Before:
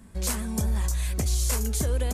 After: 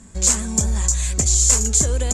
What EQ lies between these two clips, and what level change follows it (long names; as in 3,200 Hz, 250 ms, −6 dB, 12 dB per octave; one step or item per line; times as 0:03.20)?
low-pass with resonance 7,200 Hz, resonance Q 7.1
+4.5 dB